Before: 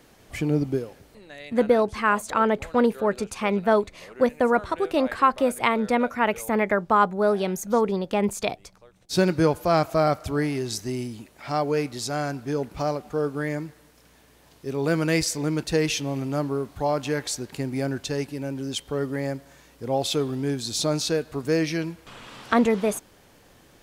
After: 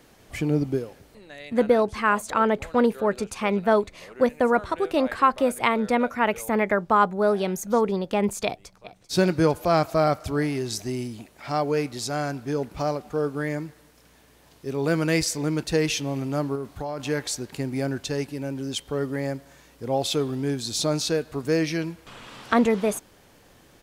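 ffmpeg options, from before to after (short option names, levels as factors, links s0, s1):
-filter_complex "[0:a]asplit=2[s0][s1];[s1]afade=t=in:st=8.45:d=0.01,afade=t=out:st=9.12:d=0.01,aecho=0:1:390|780|1170|1560|1950|2340|2730|3120|3510|3900|4290|4680:0.177828|0.142262|0.11381|0.0910479|0.0728383|0.0582707|0.0466165|0.0372932|0.0298346|0.0238677|0.0190941|0.0152753[s2];[s0][s2]amix=inputs=2:normalize=0,asettb=1/sr,asplit=3[s3][s4][s5];[s3]atrim=end=16.554[s6];[s4]atrim=start=16.55:end=17,asetpts=PTS-STARTPTS,afade=t=in:d=0.004:c=qsin,afade=t=out:st=0.446:d=0.004:c=qsin,acompressor=threshold=0.0501:ratio=10:attack=3.2:release=140:knee=1:detection=peak[s7];[s5]atrim=start=16.996[s8];[s6][s7]acrossfade=d=0.004:c1=hsin:c2=qsin[s9];[s9][s8]acrossfade=d=0.004:c1=qsin:c2=hsin"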